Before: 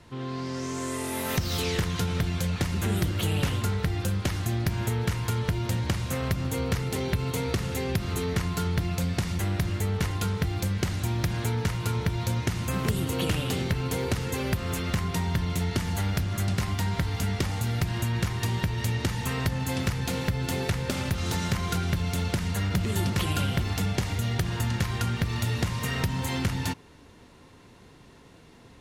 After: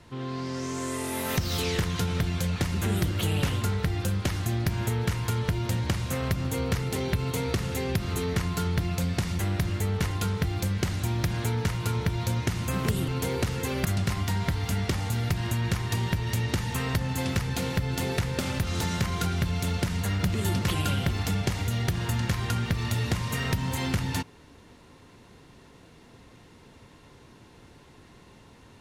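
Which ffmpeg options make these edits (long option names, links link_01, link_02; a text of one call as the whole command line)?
ffmpeg -i in.wav -filter_complex "[0:a]asplit=3[link_01][link_02][link_03];[link_01]atrim=end=13.082[link_04];[link_02]atrim=start=13.768:end=14.542[link_05];[link_03]atrim=start=16.358[link_06];[link_04][link_05]acrossfade=duration=0.004:curve1=hsin:curve2=hsin[link_07];[link_07][link_06]acrossfade=duration=0.004:curve1=hsin:curve2=hsin" out.wav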